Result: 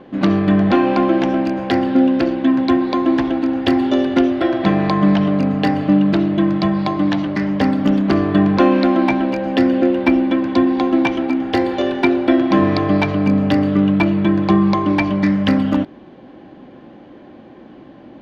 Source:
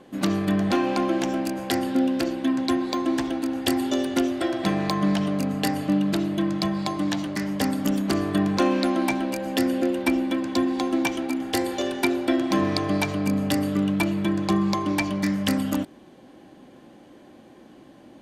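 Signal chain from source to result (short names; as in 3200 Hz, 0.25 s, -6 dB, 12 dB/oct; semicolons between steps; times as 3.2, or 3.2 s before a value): air absorption 270 m; gain +9 dB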